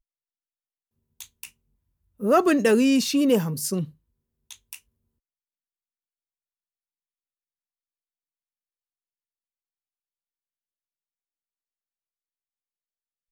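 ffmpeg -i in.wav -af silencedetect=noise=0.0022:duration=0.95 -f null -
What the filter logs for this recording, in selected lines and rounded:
silence_start: 0.00
silence_end: 1.20 | silence_duration: 1.20
silence_start: 4.80
silence_end: 13.31 | silence_duration: 8.52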